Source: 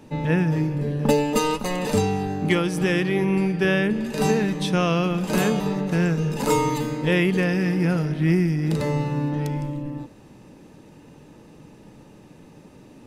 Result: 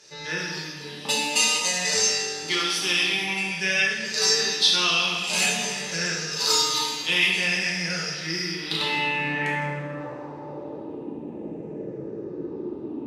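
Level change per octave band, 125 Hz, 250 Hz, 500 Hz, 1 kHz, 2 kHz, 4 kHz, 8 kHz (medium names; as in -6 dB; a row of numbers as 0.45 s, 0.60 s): -14.5 dB, -12.0 dB, -8.0 dB, -2.5 dB, +5.0 dB, +13.0 dB, +12.0 dB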